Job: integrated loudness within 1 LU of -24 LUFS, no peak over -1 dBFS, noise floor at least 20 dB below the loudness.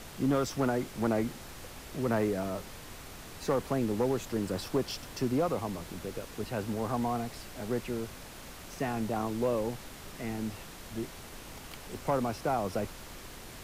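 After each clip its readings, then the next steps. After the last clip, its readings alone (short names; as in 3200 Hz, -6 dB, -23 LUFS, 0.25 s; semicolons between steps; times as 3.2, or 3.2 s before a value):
clipped 0.3%; flat tops at -21.0 dBFS; noise floor -47 dBFS; noise floor target -54 dBFS; loudness -33.5 LUFS; peak -21.0 dBFS; loudness target -24.0 LUFS
-> clip repair -21 dBFS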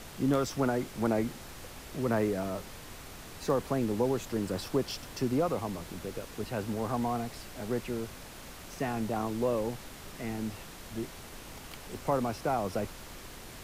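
clipped 0.0%; noise floor -47 dBFS; noise floor target -53 dBFS
-> noise print and reduce 6 dB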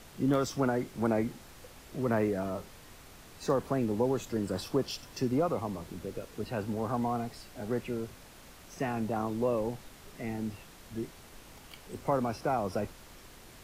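noise floor -53 dBFS; loudness -33.0 LUFS; peak -16.0 dBFS; loudness target -24.0 LUFS
-> gain +9 dB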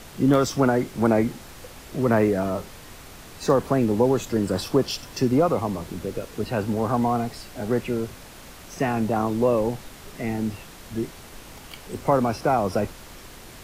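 loudness -24.0 LUFS; peak -7.0 dBFS; noise floor -44 dBFS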